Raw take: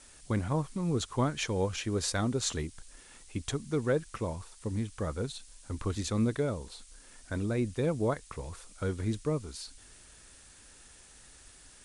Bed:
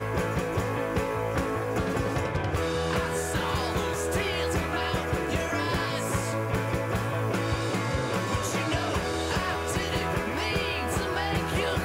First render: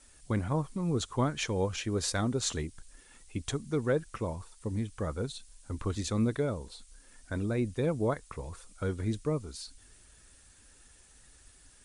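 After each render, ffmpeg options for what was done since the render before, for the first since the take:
-af "afftdn=nr=6:nf=-55"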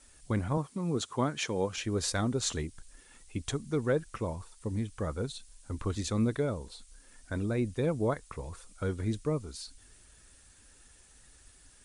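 -filter_complex "[0:a]asettb=1/sr,asplit=3[s0][s1][s2];[s0]atrim=end=0.574[s3];[s1]atrim=start=0.57:end=1.78,asetpts=PTS-STARTPTS,afade=t=in:d=0.004:c=qsin,afade=t=out:st=1.206:d=0.004:c=qsin,highpass=140[s4];[s2]atrim=start=1.776[s5];[s3][s4]acrossfade=d=0.004:c1=hsin:c2=qsin[s6];[s6][s5]acrossfade=d=0.004:c1=qsin:c2=hsin"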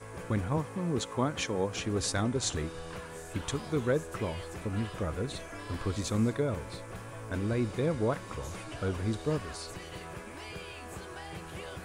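-filter_complex "[1:a]volume=0.178[s0];[0:a][s0]amix=inputs=2:normalize=0"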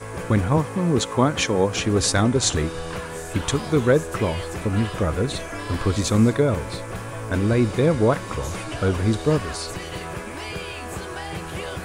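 -af "volume=3.55"

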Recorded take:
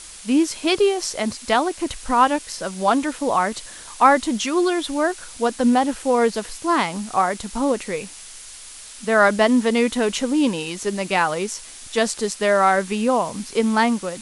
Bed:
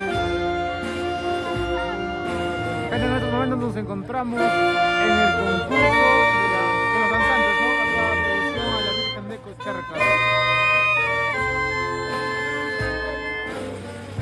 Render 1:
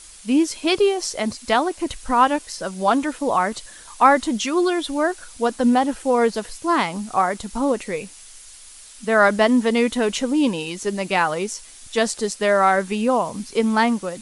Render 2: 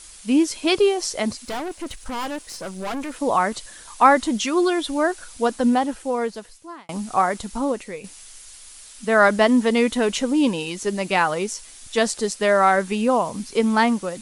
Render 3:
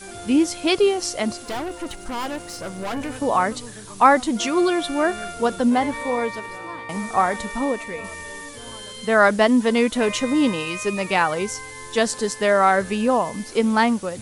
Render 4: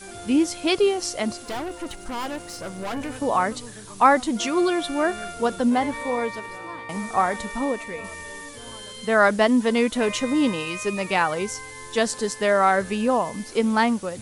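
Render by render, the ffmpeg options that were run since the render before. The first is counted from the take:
-af "afftdn=nr=6:nf=-40"
-filter_complex "[0:a]asettb=1/sr,asplit=3[s0][s1][s2];[s0]atrim=end=1.454[s3];[s1]atrim=start=1.45:end=3.16,asetpts=PTS-STARTPTS,afade=t=in:d=0.004:c=qsin,afade=t=out:st=1.706:d=0.004:c=qsin,aeval=exprs='(tanh(20*val(0)+0.5)-tanh(0.5))/20':c=same[s4];[s2]atrim=start=3.156[s5];[s3][s4]acrossfade=d=0.004:c1=hsin:c2=qsin[s6];[s6][s5]acrossfade=d=0.004:c1=qsin:c2=hsin,asplit=3[s7][s8][s9];[s7]atrim=end=6.89,asetpts=PTS-STARTPTS,afade=t=out:st=5.47:d=1.42[s10];[s8]atrim=start=6.89:end=8.04,asetpts=PTS-STARTPTS,afade=t=in:d=0.004:c=hsin,afade=t=out:st=0.51:d=0.64:silence=0.354813[s11];[s9]atrim=start=8.04,asetpts=PTS-STARTPTS,afade=t=in:d=0.004:c=hsin:silence=0.354813[s12];[s10][s11][s12]concat=n=3:v=0:a=1"
-filter_complex "[1:a]volume=0.188[s0];[0:a][s0]amix=inputs=2:normalize=0"
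-af "volume=0.794"

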